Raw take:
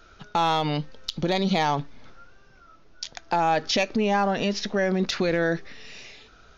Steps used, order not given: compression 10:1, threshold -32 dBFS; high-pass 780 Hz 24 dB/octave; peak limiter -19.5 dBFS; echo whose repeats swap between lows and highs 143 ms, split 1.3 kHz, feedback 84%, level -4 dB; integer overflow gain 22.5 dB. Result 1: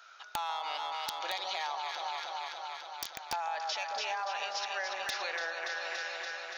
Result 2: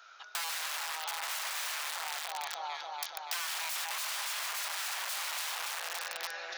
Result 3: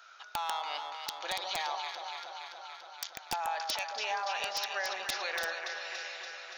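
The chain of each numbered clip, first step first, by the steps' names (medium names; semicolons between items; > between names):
high-pass > peak limiter > echo whose repeats swap between lows and highs > compression > integer overflow; echo whose repeats swap between lows and highs > integer overflow > high-pass > compression > peak limiter; high-pass > compression > peak limiter > echo whose repeats swap between lows and highs > integer overflow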